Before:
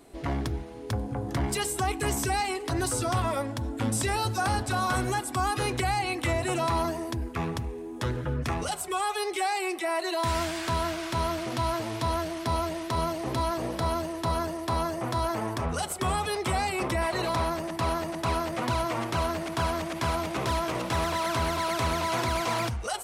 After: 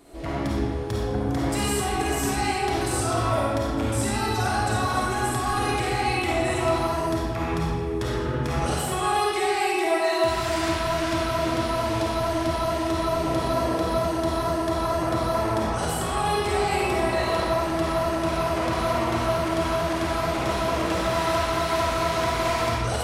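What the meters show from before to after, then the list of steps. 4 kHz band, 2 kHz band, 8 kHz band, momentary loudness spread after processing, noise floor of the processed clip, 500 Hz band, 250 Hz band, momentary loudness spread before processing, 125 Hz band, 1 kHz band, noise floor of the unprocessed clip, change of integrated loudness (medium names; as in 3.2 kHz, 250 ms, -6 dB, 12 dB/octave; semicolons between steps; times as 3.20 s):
+3.5 dB, +4.0 dB, +2.0 dB, 3 LU, -27 dBFS, +6.5 dB, +5.5 dB, 4 LU, +3.0 dB, +4.0 dB, -38 dBFS, +4.5 dB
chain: peak limiter -23 dBFS, peak gain reduction 6 dB; algorithmic reverb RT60 1.9 s, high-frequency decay 0.7×, pre-delay 10 ms, DRR -6.5 dB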